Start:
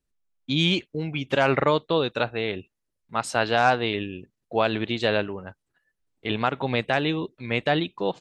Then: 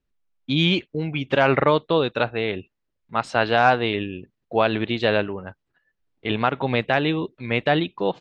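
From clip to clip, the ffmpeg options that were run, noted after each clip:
-af "lowpass=3.9k,volume=3dB"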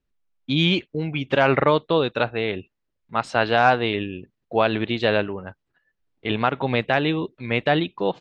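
-af anull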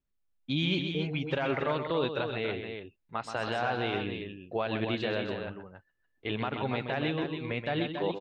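-filter_complex "[0:a]alimiter=limit=-12dB:level=0:latency=1:release=77,flanger=delay=0.9:depth=2.2:regen=-69:speed=1.7:shape=triangular,asplit=2[a][b];[b]aecho=0:1:128.3|279.9:0.398|0.447[c];[a][c]amix=inputs=2:normalize=0,volume=-3dB"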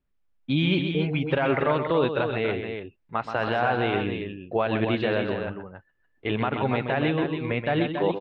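-af "lowpass=2.7k,volume=7dB"

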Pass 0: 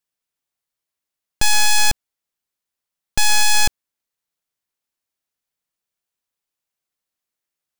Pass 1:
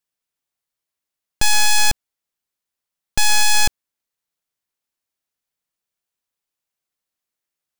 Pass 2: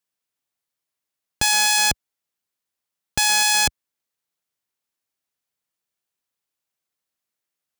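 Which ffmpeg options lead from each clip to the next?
-af anull
-af "highpass=61"

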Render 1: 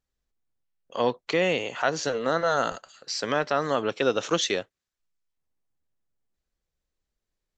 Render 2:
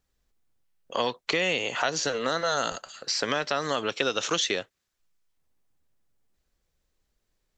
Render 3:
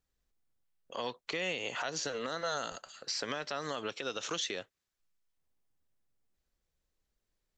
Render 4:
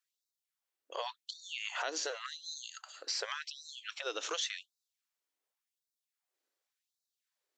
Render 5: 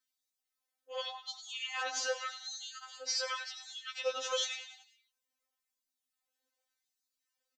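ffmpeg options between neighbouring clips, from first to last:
-filter_complex "[0:a]acrossover=split=1000|2700[a][b][c];[a]acompressor=threshold=-37dB:ratio=4[d];[b]acompressor=threshold=-40dB:ratio=4[e];[c]acompressor=threshold=-35dB:ratio=4[f];[d][e][f]amix=inputs=3:normalize=0,volume=7.5dB"
-af "alimiter=limit=-17dB:level=0:latency=1:release=108,volume=-7dB"
-af "afftfilt=real='re*gte(b*sr/1024,250*pow(3700/250,0.5+0.5*sin(2*PI*0.89*pts/sr)))':imag='im*gte(b*sr/1024,250*pow(3700/250,0.5+0.5*sin(2*PI*0.89*pts/sr)))':win_size=1024:overlap=0.75"
-filter_complex "[0:a]asplit=6[a][b][c][d][e][f];[b]adelay=97,afreqshift=61,volume=-12dB[g];[c]adelay=194,afreqshift=122,volume=-18dB[h];[d]adelay=291,afreqshift=183,volume=-24dB[i];[e]adelay=388,afreqshift=244,volume=-30.1dB[j];[f]adelay=485,afreqshift=305,volume=-36.1dB[k];[a][g][h][i][j][k]amix=inputs=6:normalize=0,afftfilt=real='re*3.46*eq(mod(b,12),0)':imag='im*3.46*eq(mod(b,12),0)':win_size=2048:overlap=0.75,volume=3.5dB"

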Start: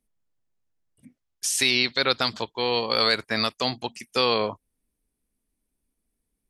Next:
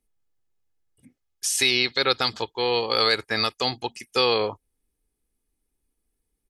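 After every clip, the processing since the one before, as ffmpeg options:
-af "aecho=1:1:2.4:0.4"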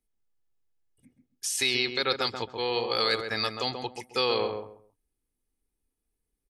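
-filter_complex "[0:a]asplit=2[a][b];[b]adelay=134,lowpass=f=1.2k:p=1,volume=-4.5dB,asplit=2[c][d];[d]adelay=134,lowpass=f=1.2k:p=1,volume=0.25,asplit=2[e][f];[f]adelay=134,lowpass=f=1.2k:p=1,volume=0.25[g];[a][c][e][g]amix=inputs=4:normalize=0,volume=-5.5dB"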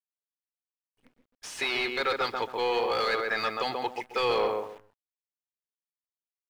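-filter_complex "[0:a]asplit=2[a][b];[b]highpass=f=720:p=1,volume=20dB,asoftclip=type=tanh:threshold=-10.5dB[c];[a][c]amix=inputs=2:normalize=0,lowpass=f=2.5k:p=1,volume=-6dB,acrusher=bits=8:dc=4:mix=0:aa=0.000001,bass=f=250:g=-2,treble=f=4k:g=-11,volume=-4.5dB"

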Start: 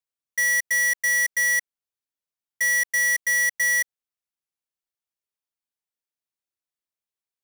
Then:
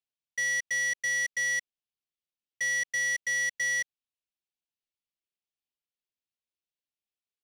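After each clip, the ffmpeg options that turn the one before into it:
-af "firequalizer=gain_entry='entry(260,0);entry(1300,-11);entry(2700,3);entry(14000,-23)':delay=0.05:min_phase=1,volume=-2.5dB"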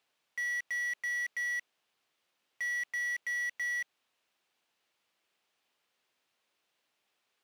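-filter_complex "[0:a]asplit=2[a][b];[b]highpass=f=720:p=1,volume=34dB,asoftclip=type=tanh:threshold=-22.5dB[c];[a][c]amix=inputs=2:normalize=0,lowpass=f=1.6k:p=1,volume=-6dB,volume=-3.5dB"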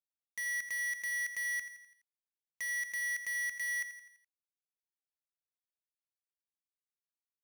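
-af "acrusher=bits=5:mix=0:aa=0.000001,aecho=1:1:84|168|252|336|420:0.251|0.128|0.0653|0.0333|0.017,volume=-4dB"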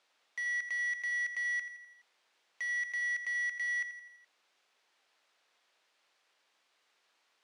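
-af "aeval=exprs='val(0)+0.5*0.00133*sgn(val(0))':c=same,highpass=480,lowpass=3.9k,volume=2dB"

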